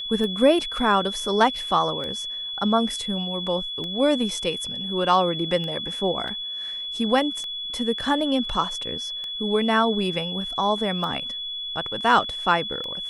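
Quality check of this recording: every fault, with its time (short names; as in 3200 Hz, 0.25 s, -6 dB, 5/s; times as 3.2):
tick 33 1/3 rpm -20 dBFS
tone 3400 Hz -29 dBFS
6.28 gap 2.9 ms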